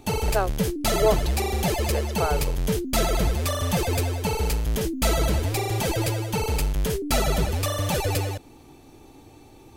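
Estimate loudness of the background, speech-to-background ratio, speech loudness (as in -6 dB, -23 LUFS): -25.0 LUFS, -3.5 dB, -28.5 LUFS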